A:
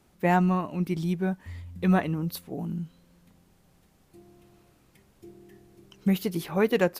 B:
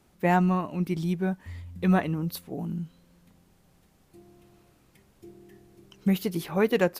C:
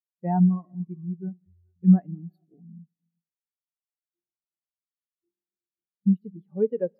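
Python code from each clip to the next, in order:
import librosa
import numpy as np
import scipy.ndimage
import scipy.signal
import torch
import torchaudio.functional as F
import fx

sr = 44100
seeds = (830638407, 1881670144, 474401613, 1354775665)

y1 = x
y2 = fx.rev_gated(y1, sr, seeds[0], gate_ms=490, shape='flat', drr_db=12.0)
y2 = fx.spectral_expand(y2, sr, expansion=2.5)
y2 = y2 * librosa.db_to_amplitude(3.5)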